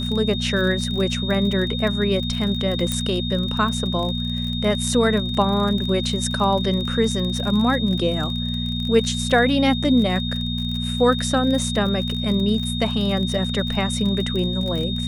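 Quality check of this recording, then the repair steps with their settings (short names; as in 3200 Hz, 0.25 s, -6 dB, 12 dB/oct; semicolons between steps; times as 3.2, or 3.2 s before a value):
crackle 36/s -26 dBFS
hum 60 Hz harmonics 4 -26 dBFS
tone 3700 Hz -28 dBFS
2.92 pop -8 dBFS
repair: de-click; notch 3700 Hz, Q 30; de-hum 60 Hz, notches 4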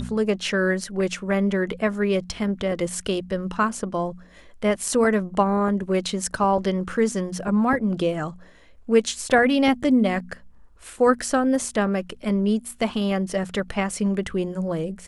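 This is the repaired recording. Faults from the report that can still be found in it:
none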